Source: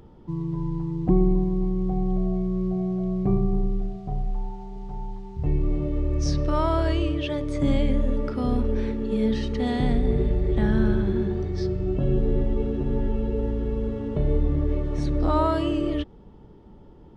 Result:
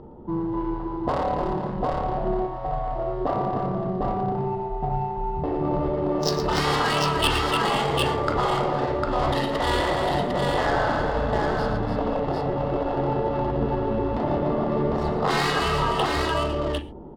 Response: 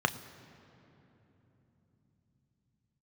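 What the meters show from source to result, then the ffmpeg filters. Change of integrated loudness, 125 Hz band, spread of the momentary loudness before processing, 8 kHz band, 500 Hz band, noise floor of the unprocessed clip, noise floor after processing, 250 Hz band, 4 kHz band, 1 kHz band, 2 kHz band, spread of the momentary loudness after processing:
+1.0 dB, −3.0 dB, 9 LU, can't be measured, +3.5 dB, −48 dBFS, −31 dBFS, −3.0 dB, +12.0 dB, +11.0 dB, +12.0 dB, 6 LU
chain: -filter_complex "[0:a]aeval=exprs='clip(val(0),-1,0.112)':channel_layout=same,tiltshelf=frequency=860:gain=-7.5,adynamicsmooth=sensitivity=4:basefreq=690,aecho=1:1:114|296|503|752:0.316|0.422|0.112|0.668,asplit=2[link_01][link_02];[1:a]atrim=start_sample=2205,afade=type=out:start_time=0.16:duration=0.01,atrim=end_sample=7497,asetrate=34839,aresample=44100[link_03];[link_02][link_03]afir=irnorm=-1:irlink=0,volume=-11dB[link_04];[link_01][link_04]amix=inputs=2:normalize=0,afftfilt=real='re*lt(hypot(re,im),0.224)':imag='im*lt(hypot(re,im),0.224)':win_size=1024:overlap=0.75,volume=9dB"

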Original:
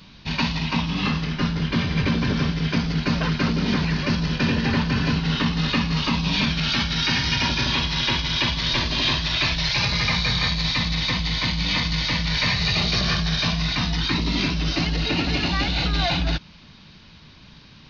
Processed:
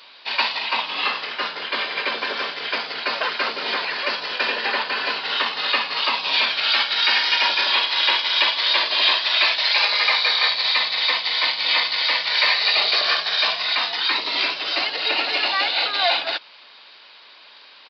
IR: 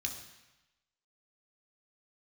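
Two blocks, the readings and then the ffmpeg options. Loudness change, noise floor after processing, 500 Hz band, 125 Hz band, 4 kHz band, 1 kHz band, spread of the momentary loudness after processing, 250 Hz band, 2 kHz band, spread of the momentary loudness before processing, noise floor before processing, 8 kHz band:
+3.0 dB, −47 dBFS, +1.5 dB, below −30 dB, +5.0 dB, +5.0 dB, 8 LU, −19.5 dB, +5.0 dB, 3 LU, −47 dBFS, can't be measured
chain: -af "highpass=frequency=500:width=0.5412,highpass=frequency=500:width=1.3066,aresample=11025,aresample=44100,volume=5dB"

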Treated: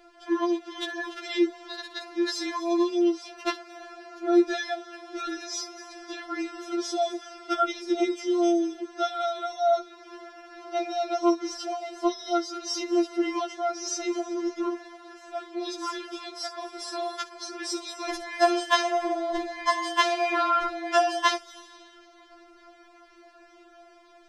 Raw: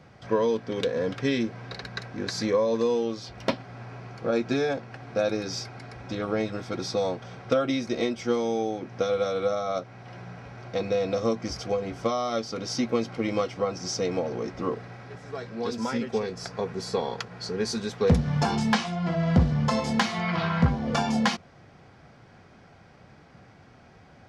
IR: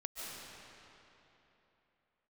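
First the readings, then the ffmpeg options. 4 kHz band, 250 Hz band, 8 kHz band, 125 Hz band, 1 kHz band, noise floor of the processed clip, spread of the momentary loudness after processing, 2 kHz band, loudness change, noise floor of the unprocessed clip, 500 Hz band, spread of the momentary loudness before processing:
+1.5 dB, 0.0 dB, +2.5 dB, below −40 dB, +4.5 dB, −54 dBFS, 15 LU, +1.5 dB, 0.0 dB, −53 dBFS, −1.5 dB, 12 LU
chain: -filter_complex "[0:a]asplit=2[link_01][link_02];[link_02]aderivative[link_03];[1:a]atrim=start_sample=2205,adelay=63[link_04];[link_03][link_04]afir=irnorm=-1:irlink=0,volume=-10dB[link_05];[link_01][link_05]amix=inputs=2:normalize=0,afftfilt=real='re*4*eq(mod(b,16),0)':imag='im*4*eq(mod(b,16),0)':win_size=2048:overlap=0.75,volume=4dB"

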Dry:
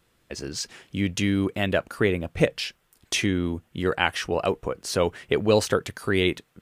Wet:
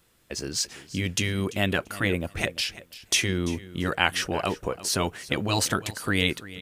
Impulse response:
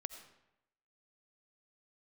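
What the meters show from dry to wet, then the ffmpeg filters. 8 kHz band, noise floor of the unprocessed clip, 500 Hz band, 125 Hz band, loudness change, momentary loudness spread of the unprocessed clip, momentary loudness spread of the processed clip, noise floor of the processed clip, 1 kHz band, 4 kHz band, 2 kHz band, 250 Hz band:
+5.0 dB, −67 dBFS, −7.0 dB, −0.5 dB, −1.5 dB, 11 LU, 7 LU, −60 dBFS, 0.0 dB, +2.5 dB, +1.0 dB, −3.5 dB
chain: -af "afftfilt=real='re*lt(hypot(re,im),0.501)':imag='im*lt(hypot(re,im),0.501)':win_size=1024:overlap=0.75,highshelf=frequency=5300:gain=8,aecho=1:1:340|680:0.141|0.0254"

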